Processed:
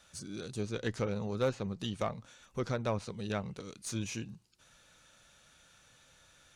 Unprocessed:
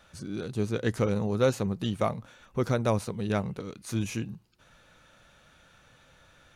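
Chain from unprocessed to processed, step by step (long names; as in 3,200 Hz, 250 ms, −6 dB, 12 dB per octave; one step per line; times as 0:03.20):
parametric band 7,900 Hz +13 dB 2.1 octaves
treble cut that deepens with the level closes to 2,600 Hz, closed at −21 dBFS
harmonic generator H 6 −25 dB, 8 −42 dB, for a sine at −12.5 dBFS
level −7.5 dB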